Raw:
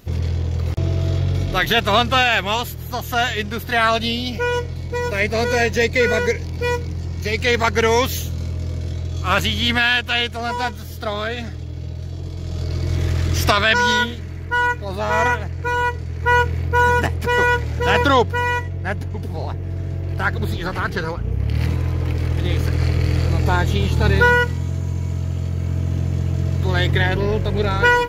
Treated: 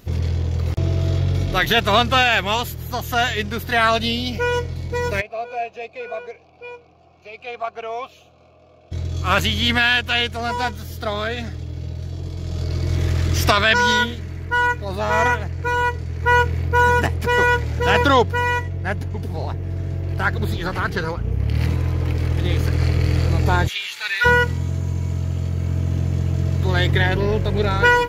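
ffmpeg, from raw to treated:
-filter_complex "[0:a]asplit=3[s0][s1][s2];[s0]afade=t=out:st=5.2:d=0.02[s3];[s1]asplit=3[s4][s5][s6];[s4]bandpass=f=730:t=q:w=8,volume=1[s7];[s5]bandpass=f=1090:t=q:w=8,volume=0.501[s8];[s6]bandpass=f=2440:t=q:w=8,volume=0.355[s9];[s7][s8][s9]amix=inputs=3:normalize=0,afade=t=in:st=5.2:d=0.02,afade=t=out:st=8.91:d=0.02[s10];[s2]afade=t=in:st=8.91:d=0.02[s11];[s3][s10][s11]amix=inputs=3:normalize=0,asplit=3[s12][s13][s14];[s12]afade=t=out:st=23.67:d=0.02[s15];[s13]highpass=f=2100:t=q:w=2.1,afade=t=in:st=23.67:d=0.02,afade=t=out:st=24.24:d=0.02[s16];[s14]afade=t=in:st=24.24:d=0.02[s17];[s15][s16][s17]amix=inputs=3:normalize=0"

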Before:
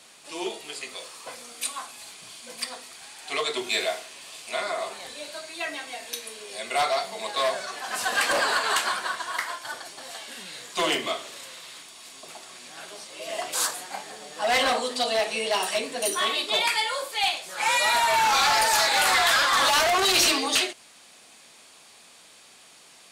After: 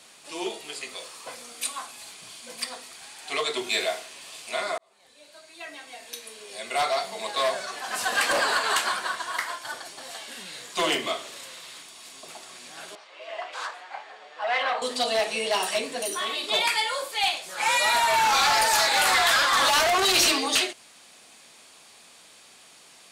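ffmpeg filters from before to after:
-filter_complex "[0:a]asettb=1/sr,asplit=3[s0][s1][s2];[s0]atrim=end=12.954[s3];[s1]atrim=start=12.95:end=14.82,asetpts=PTS-STARTPTS,afade=t=in:d=0.004:c=qsin,afade=t=out:st=1.866:d=0.004:c=qsin,highpass=690,lowpass=2400[s4];[s2]atrim=start=14.816[s5];[s3][s4]acrossfade=d=0.004:c1=hsin:c2=qsin[s6];[s6][s5]acrossfade=d=0.004:c1=qsin:c2=hsin,asettb=1/sr,asplit=3[s7][s8][s9];[s7]atrim=end=15.994[s10];[s8]atrim=start=15.99:end=16.44,asetpts=PTS-STARTPTS,afade=t=in:d=0.004:c=qsin,afade=t=out:st=0.446:d=0.004:c=qsin,acompressor=threshold=0.0398:ratio=2:attack=3.2:release=140:knee=1:detection=peak[s11];[s9]atrim=start=16.436[s12];[s10][s11]acrossfade=d=0.004:c1=hsin:c2=qsin[s13];[s13][s12]acrossfade=d=0.004:c1=qsin:c2=hsin,asplit=2[s14][s15];[s14]atrim=end=4.78,asetpts=PTS-STARTPTS,afade=t=out:st=4.776:d=0.004:c=hsin[s16];[s15]atrim=start=4.78,asetpts=PTS-STARTPTS,afade=t=in:d=2.3[s17];[s16][s17]concat=n=2:v=0:a=1"

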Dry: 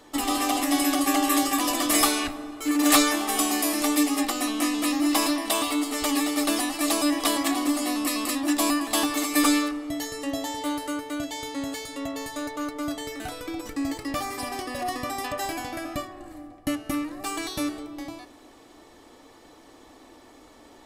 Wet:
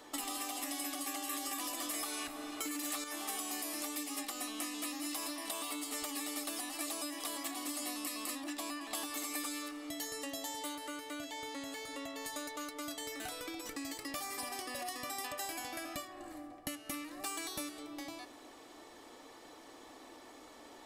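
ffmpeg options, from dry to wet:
-filter_complex "[0:a]asettb=1/sr,asplit=3[s0][s1][s2];[s0]atrim=end=8.444[s3];[s1]atrim=start=8.44:end=8.95,asetpts=PTS-STARTPTS,afade=t=in:d=0.004:c=qsin,afade=t=out:st=0.506:d=0.004:c=qsin,lowpass=f=2200:p=1[s4];[s2]atrim=start=8.946[s5];[s3][s4]acrossfade=d=0.004:c1=hsin:c2=qsin[s6];[s6][s5]acrossfade=d=0.004:c1=qsin:c2=hsin,asettb=1/sr,asplit=3[s7][s8][s9];[s7]atrim=end=10.754[s10];[s8]atrim=start=10.75:end=12.25,asetpts=PTS-STARTPTS,afade=t=in:d=0.004:c=qsin,afade=t=out:st=1.496:d=0.004:c=qsin,acrossover=split=2600[s11][s12];[s12]acompressor=threshold=0.00562:ratio=4:attack=1:release=60[s13];[s11][s13]amix=inputs=2:normalize=0[s14];[s9]atrim=start=12.246[s15];[s10][s14]acrossfade=d=0.004:c1=hsin:c2=qsin[s16];[s16][s15]acrossfade=d=0.004:c1=qsin:c2=hsin,asplit=3[s17][s18][s19];[s17]atrim=end=1.332[s20];[s18]atrim=start=1.328:end=3.042,asetpts=PTS-STARTPTS,volume=2.37[s21];[s19]atrim=start=3.038[s22];[s20][s21]acrossfade=d=0.004:c1=hsin:c2=hsin[s23];[s23][s22]acrossfade=d=0.004:c1=hsin:c2=hsin,lowshelf=f=200:g=-11.5,alimiter=limit=0.126:level=0:latency=1:release=353,acrossover=split=2100|7400[s24][s25][s26];[s24]acompressor=threshold=0.00794:ratio=4[s27];[s25]acompressor=threshold=0.00562:ratio=4[s28];[s26]acompressor=threshold=0.01:ratio=4[s29];[s27][s28][s29]amix=inputs=3:normalize=0,volume=0.841"

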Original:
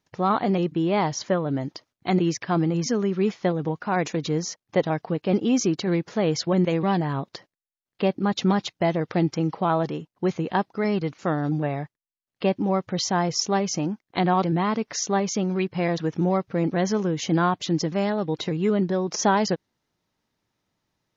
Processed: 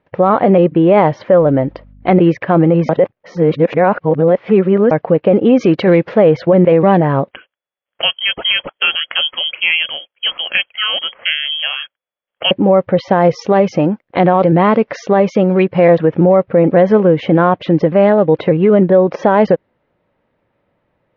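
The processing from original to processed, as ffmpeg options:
-filter_complex "[0:a]asettb=1/sr,asplit=3[s0][s1][s2];[s0]atrim=end=1.394[s3];[s1]atrim=start=1.39:end=2.19,asetpts=PTS-STARTPTS,afade=t=in:d=0.004:c=qsin,afade=t=out:st=0.796:d=0.004:c=qsin,aeval=exprs='val(0)+0.00251*(sin(2*PI*50*n/s)+sin(2*PI*2*50*n/s)/2+sin(2*PI*3*50*n/s)/3+sin(2*PI*4*50*n/s)/4+sin(2*PI*5*50*n/s)/5)':c=same[s4];[s2]atrim=start=2.186[s5];[s3][s4]acrossfade=d=0.004:c1=hsin:c2=qsin[s6];[s6][s5]acrossfade=d=0.004:c1=qsin:c2=hsin,asplit=3[s7][s8][s9];[s7]afade=t=out:st=5.59:d=0.02[s10];[s8]highshelf=f=2300:g=10.5,afade=t=in:st=5.59:d=0.02,afade=t=out:st=6.13:d=0.02[s11];[s9]afade=t=in:st=6.13:d=0.02[s12];[s10][s11][s12]amix=inputs=3:normalize=0,asettb=1/sr,asplit=3[s13][s14][s15];[s13]atrim=end=7.314[s16];[s14]atrim=start=7.31:end=12.51,asetpts=PTS-STARTPTS,afade=t=in:d=0.004:c=qsin,afade=t=out:st=5.196:d=0.004:c=qsin,lowpass=f=2900:t=q:w=0.5098,lowpass=f=2900:t=q:w=0.6013,lowpass=f=2900:t=q:w=0.9,lowpass=f=2900:t=q:w=2.563,afreqshift=-3400[s17];[s15]atrim=start=12.506[s18];[s16][s17]acrossfade=d=0.004:c1=hsin:c2=qsin[s19];[s19][s18]acrossfade=d=0.004:c1=qsin:c2=hsin,asettb=1/sr,asplit=3[s20][s21][s22];[s20]atrim=end=13.094[s23];[s21]atrim=start=13.09:end=15.9,asetpts=PTS-STARTPTS,afade=t=in:d=0.004:c=qsin,afade=t=out:st=2.806:d=0.004:c=qsin,equalizer=f=6200:t=o:w=1.2:g=8.5[s24];[s22]atrim=start=15.896[s25];[s23][s24]acrossfade=d=0.004:c1=hsin:c2=qsin[s26];[s26][s25]acrossfade=d=0.004:c1=qsin:c2=hsin,asplit=3[s27][s28][s29];[s27]atrim=end=2.892[s30];[s28]atrim=start=2.888:end=4.912,asetpts=PTS-STARTPTS,areverse[s31];[s29]atrim=start=4.908[s32];[s30][s31]acrossfade=d=0.004:c1=hsin:c2=hsin[s33];[s33][s32]acrossfade=d=0.004:c1=hsin:c2=hsin,lowpass=f=2600:w=0.5412,lowpass=f=2600:w=1.3066,equalizer=f=540:t=o:w=0.48:g=11.5,alimiter=level_in=4.22:limit=0.891:release=50:level=0:latency=1,volume=0.891"

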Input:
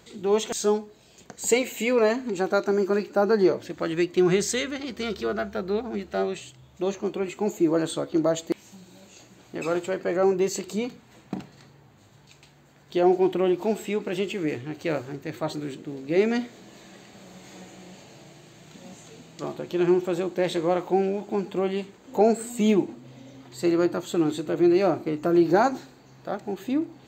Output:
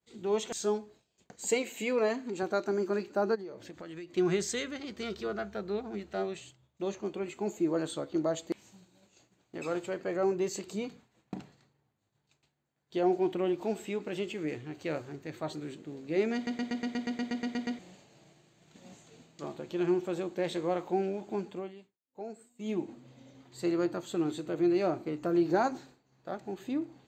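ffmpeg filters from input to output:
-filter_complex "[0:a]asettb=1/sr,asplit=3[s0][s1][s2];[s0]atrim=end=1.404[s3];[s1]atrim=start=1.4:end=2.43,asetpts=PTS-STARTPTS,afade=t=in:d=0.004:c=qsin,afade=t=out:st=1.026:d=0.004:c=qsin,highpass=130[s4];[s2]atrim=start=2.426[s5];[s3][s4]acrossfade=d=0.004:c1=hsin:c2=qsin[s6];[s6][s5]acrossfade=d=0.004:c1=qsin:c2=hsin,asplit=3[s7][s8][s9];[s7]afade=t=out:st=3.34:d=0.02[s10];[s8]acompressor=threshold=0.0224:ratio=6:attack=3.2:release=140:knee=1:detection=peak,afade=t=in:st=3.34:d=0.02,afade=t=out:st=4.12:d=0.02[s11];[s9]afade=t=in:st=4.12:d=0.02[s12];[s10][s11][s12]amix=inputs=3:normalize=0,asplit=15[s13][s14][s15][s16][s17][s18][s19][s20][s21][s22][s23][s24][s25][s26][s27];[s13]atrim=end=16.472[s28];[s14]atrim=start=16.348:end=16.472[s29];[s15]atrim=start=16.348:end=16.472[s30];[s16]atrim=start=16.348:end=16.472[s31];[s17]atrim=start=16.348:end=16.472[s32];[s18]atrim=start=16.348:end=16.472[s33];[s19]atrim=start=16.348:end=16.472[s34];[s20]atrim=start=16.348:end=16.472[s35];[s21]atrim=start=16.348:end=16.472[s36];[s22]atrim=start=16.348:end=16.472[s37];[s23]atrim=start=16.348:end=16.472[s38];[s24]atrim=start=16.348:end=16.472[s39];[s25]atrim=start=17.788:end=21.75,asetpts=PTS-STARTPTS,afade=t=out:st=3.612:d=0.35:silence=0.177828[s40];[s26]atrim=start=21.75:end=22.58,asetpts=PTS-STARTPTS,volume=0.178[s41];[s27]atrim=start=22.58,asetpts=PTS-STARTPTS,afade=t=in:d=0.35:silence=0.177828[s42];[s28][s29]acrossfade=d=0.004:c1=hsin:c2=hsin[s43];[s43][s30]acrossfade=d=0.004:c1=hsin:c2=hsin[s44];[s44][s31]acrossfade=d=0.004:c1=hsin:c2=hsin[s45];[s45][s32]acrossfade=d=0.004:c1=hsin:c2=hsin[s46];[s46][s33]acrossfade=d=0.004:c1=hsin:c2=hsin[s47];[s47][s34]acrossfade=d=0.004:c1=hsin:c2=hsin[s48];[s48][s35]acrossfade=d=0.004:c1=hsin:c2=hsin[s49];[s49][s36]acrossfade=d=0.004:c1=hsin:c2=hsin[s50];[s50][s37]acrossfade=d=0.004:c1=hsin:c2=hsin[s51];[s51][s38]acrossfade=d=0.004:c1=hsin:c2=hsin[s52];[s52][s39]acrossfade=d=0.004:c1=hsin:c2=hsin[s53];[s40][s41][s42]concat=n=3:v=0:a=1[s54];[s53][s54]acrossfade=d=0.004:c1=hsin:c2=hsin,lowpass=12000,agate=range=0.0224:threshold=0.00708:ratio=3:detection=peak,volume=0.422"

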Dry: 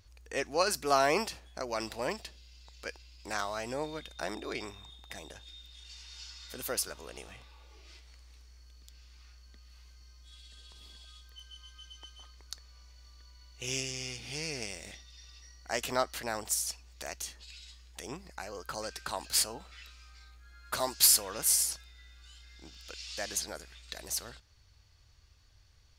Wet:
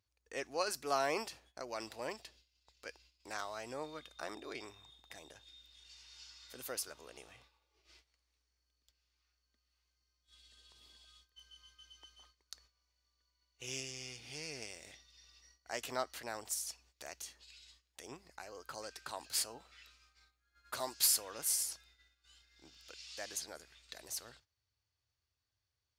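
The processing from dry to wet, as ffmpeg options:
-filter_complex "[0:a]asettb=1/sr,asplit=3[s0][s1][s2];[s0]atrim=end=3.734[s3];[s1]atrim=start=3.73:end=4.34,asetpts=PTS-STARTPTS,afade=t=in:d=0.004:c=qsin,afade=t=out:st=0.606:d=0.004:c=qsin,equalizer=f=1200:t=o:w=0.22:g=9[s4];[s2]atrim=start=4.336[s5];[s3][s4]acrossfade=d=0.004:c1=hsin:c2=qsin[s6];[s6][s5]acrossfade=d=0.004:c1=qsin:c2=hsin,highpass=100,agate=range=0.224:threshold=0.00141:ratio=16:detection=peak,equalizer=f=190:w=4.1:g=-8.5,volume=0.422"

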